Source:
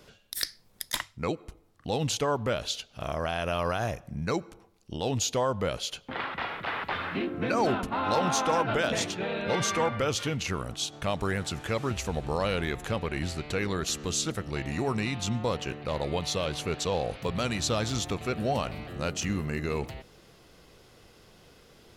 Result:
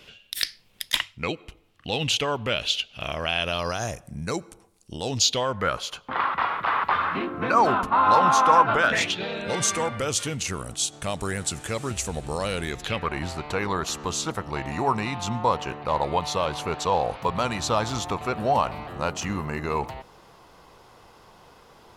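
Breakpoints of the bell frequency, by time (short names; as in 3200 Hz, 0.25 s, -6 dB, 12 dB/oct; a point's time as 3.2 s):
bell +14.5 dB 0.92 oct
3.36 s 2800 Hz
4 s 9000 Hz
4.99 s 9000 Hz
5.76 s 1100 Hz
8.79 s 1100 Hz
9.44 s 8600 Hz
12.7 s 8600 Hz
13.11 s 950 Hz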